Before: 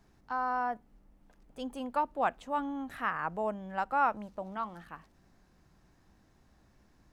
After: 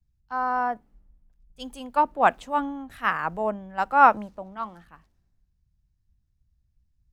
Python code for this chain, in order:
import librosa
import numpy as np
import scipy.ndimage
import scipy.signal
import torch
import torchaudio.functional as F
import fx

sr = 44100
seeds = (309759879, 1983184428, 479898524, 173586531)

y = fx.band_widen(x, sr, depth_pct=100)
y = y * librosa.db_to_amplitude(6.0)